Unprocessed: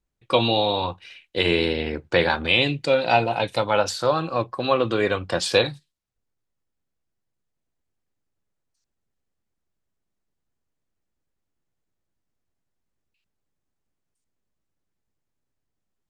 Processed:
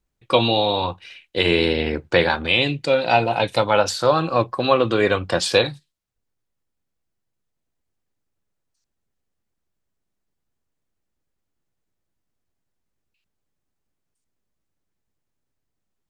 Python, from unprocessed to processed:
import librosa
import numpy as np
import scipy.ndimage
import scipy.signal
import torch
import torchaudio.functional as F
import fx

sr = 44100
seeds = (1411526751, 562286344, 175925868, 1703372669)

y = fx.rider(x, sr, range_db=3, speed_s=0.5)
y = y * librosa.db_to_amplitude(3.0)